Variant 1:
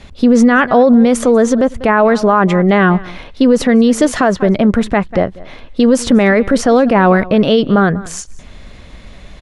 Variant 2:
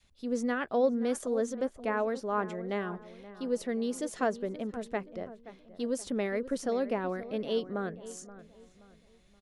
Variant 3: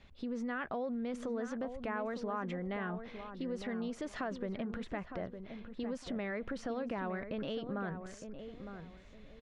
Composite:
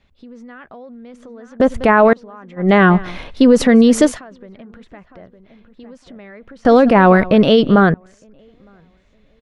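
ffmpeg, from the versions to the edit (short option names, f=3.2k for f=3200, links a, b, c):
-filter_complex "[0:a]asplit=3[a][b][c];[2:a]asplit=4[d][e][f][g];[d]atrim=end=1.602[h];[a]atrim=start=1.598:end=2.132[i];[e]atrim=start=2.128:end=2.72[j];[b]atrim=start=2.56:end=4.2[k];[f]atrim=start=4.04:end=6.652[l];[c]atrim=start=6.648:end=7.942[m];[g]atrim=start=7.938[n];[h][i]acrossfade=d=0.004:c1=hsin:c2=hsin[o];[o][j]acrossfade=d=0.004:c1=hsin:c2=hsin[p];[p][k]acrossfade=d=0.16:c1=tri:c2=tri[q];[q][l]acrossfade=d=0.16:c1=tri:c2=tri[r];[r][m]acrossfade=d=0.004:c1=hsin:c2=hsin[s];[s][n]acrossfade=d=0.004:c1=hsin:c2=hsin"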